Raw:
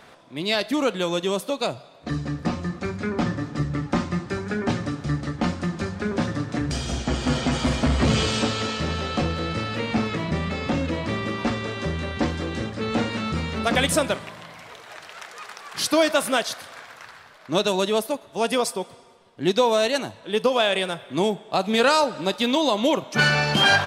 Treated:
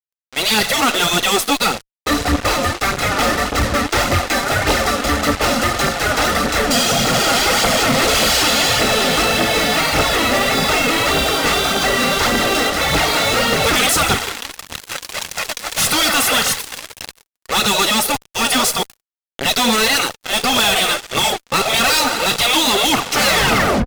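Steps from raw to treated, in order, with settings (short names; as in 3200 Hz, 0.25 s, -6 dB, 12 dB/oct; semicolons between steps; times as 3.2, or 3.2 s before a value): tape stop at the end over 0.64 s; comb 1.5 ms, depth 68%; spectral gate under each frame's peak -10 dB weak; fuzz box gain 42 dB, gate -42 dBFS; phaser 1.7 Hz, delay 4.3 ms, feedback 41%; gain -1 dB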